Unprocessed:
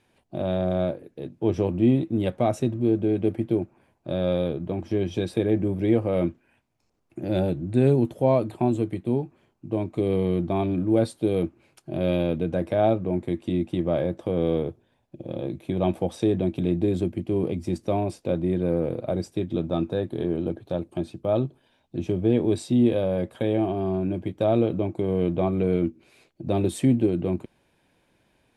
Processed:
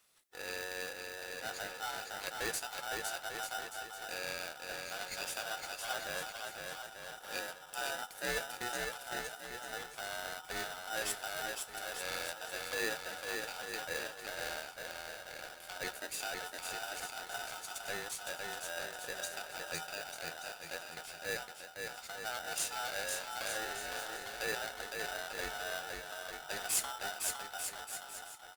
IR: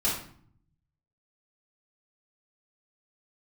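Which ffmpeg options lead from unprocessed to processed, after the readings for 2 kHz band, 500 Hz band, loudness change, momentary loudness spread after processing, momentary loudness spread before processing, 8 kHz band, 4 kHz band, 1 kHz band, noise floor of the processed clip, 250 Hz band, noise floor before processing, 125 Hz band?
+6.5 dB, −19.5 dB, −14.5 dB, 7 LU, 9 LU, can't be measured, +3.0 dB, −7.0 dB, −52 dBFS, −31.5 dB, −68 dBFS, −32.5 dB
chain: -filter_complex "[0:a]aderivative,aecho=1:1:510|892.5|1179|1395|1556:0.631|0.398|0.251|0.158|0.1,asplit=2[link_01][link_02];[1:a]atrim=start_sample=2205,asetrate=79380,aresample=44100[link_03];[link_02][link_03]afir=irnorm=-1:irlink=0,volume=-18dB[link_04];[link_01][link_04]amix=inputs=2:normalize=0,aeval=exprs='val(0)*sgn(sin(2*PI*1100*n/s))':channel_layout=same,volume=5dB"

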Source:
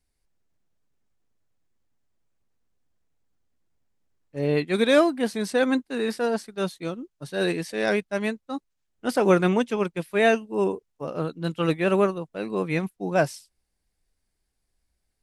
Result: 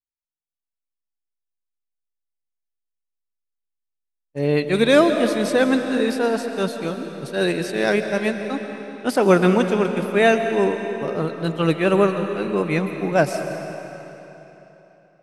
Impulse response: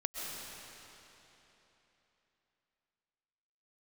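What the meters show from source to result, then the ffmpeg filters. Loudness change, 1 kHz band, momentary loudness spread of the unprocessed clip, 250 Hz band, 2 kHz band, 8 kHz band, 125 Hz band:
+4.5 dB, +4.5 dB, 14 LU, +5.0 dB, +4.5 dB, +4.5 dB, +5.0 dB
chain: -filter_complex "[0:a]agate=range=-33dB:threshold=-37dB:ratio=3:detection=peak,asplit=2[link_01][link_02];[1:a]atrim=start_sample=2205[link_03];[link_02][link_03]afir=irnorm=-1:irlink=0,volume=-4dB[link_04];[link_01][link_04]amix=inputs=2:normalize=0"

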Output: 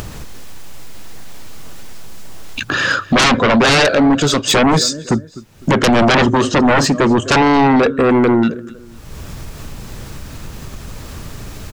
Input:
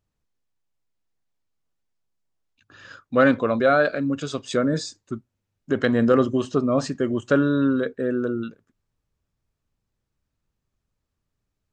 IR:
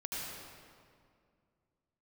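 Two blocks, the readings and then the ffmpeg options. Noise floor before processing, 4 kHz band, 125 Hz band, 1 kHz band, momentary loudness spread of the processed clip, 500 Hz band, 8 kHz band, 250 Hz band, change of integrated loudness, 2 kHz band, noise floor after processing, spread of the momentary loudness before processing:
−81 dBFS, +20.0 dB, +11.0 dB, +13.5 dB, 22 LU, +6.5 dB, +19.5 dB, +9.0 dB, +9.0 dB, +12.0 dB, −37 dBFS, 11 LU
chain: -af "acompressor=mode=upward:threshold=-20dB:ratio=2.5,aecho=1:1:253|506:0.075|0.027,aeval=exprs='0.562*sin(PI/2*6.31*val(0)/0.562)':channel_layout=same,bandreject=frequency=50:width_type=h:width=6,bandreject=frequency=100:width_type=h:width=6,volume=-3dB"

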